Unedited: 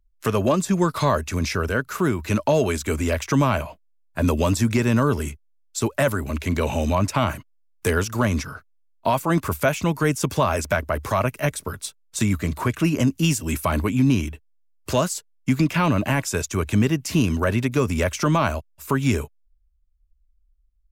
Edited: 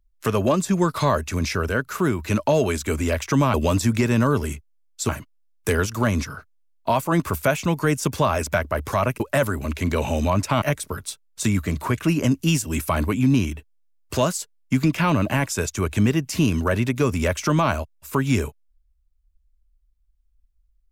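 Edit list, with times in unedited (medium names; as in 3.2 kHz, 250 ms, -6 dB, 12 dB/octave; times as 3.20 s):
3.54–4.30 s: delete
5.85–7.27 s: move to 11.38 s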